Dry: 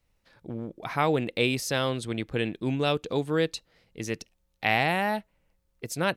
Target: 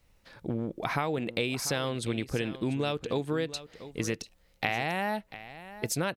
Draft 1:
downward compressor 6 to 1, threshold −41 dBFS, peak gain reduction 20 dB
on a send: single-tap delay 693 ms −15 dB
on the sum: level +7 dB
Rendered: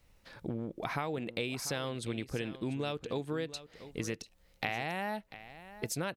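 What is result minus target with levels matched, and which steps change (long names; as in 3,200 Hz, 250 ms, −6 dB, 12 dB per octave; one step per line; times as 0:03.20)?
downward compressor: peak gain reduction +5.5 dB
change: downward compressor 6 to 1, threshold −34.5 dBFS, peak gain reduction 14.5 dB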